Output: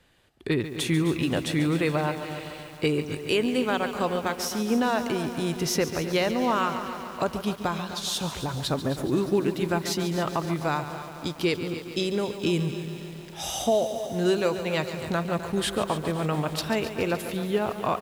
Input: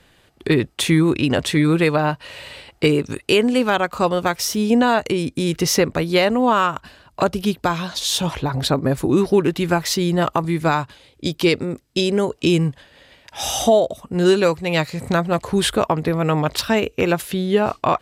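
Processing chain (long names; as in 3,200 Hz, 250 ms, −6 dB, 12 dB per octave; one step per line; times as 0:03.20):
on a send: repeating echo 257 ms, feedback 49%, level −14 dB
on the sum: feedback echo at a low word length 141 ms, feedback 80%, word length 6 bits, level −11.5 dB
level −8.5 dB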